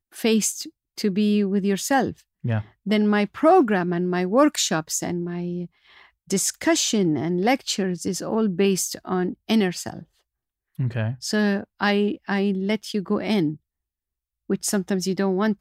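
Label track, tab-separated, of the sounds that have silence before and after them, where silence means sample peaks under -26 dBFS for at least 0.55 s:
6.310000	9.990000	sound
10.790000	13.530000	sound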